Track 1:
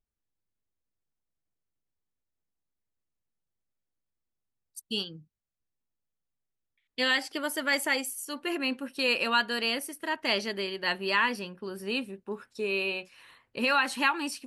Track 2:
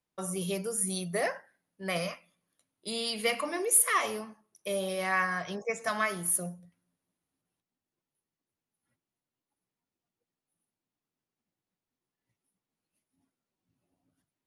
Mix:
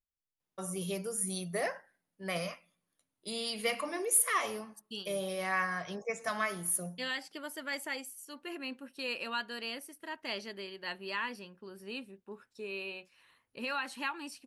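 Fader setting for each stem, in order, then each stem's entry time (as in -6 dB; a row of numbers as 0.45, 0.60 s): -10.5, -3.5 dB; 0.00, 0.40 s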